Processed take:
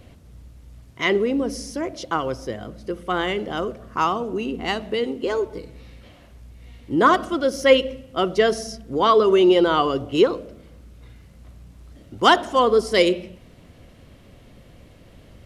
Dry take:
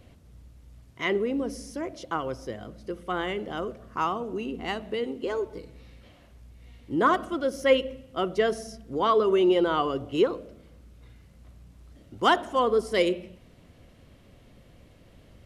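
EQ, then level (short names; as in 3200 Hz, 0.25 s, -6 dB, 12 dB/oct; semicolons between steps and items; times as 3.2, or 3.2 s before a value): dynamic EQ 4900 Hz, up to +6 dB, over -50 dBFS, Q 1.3; +6.0 dB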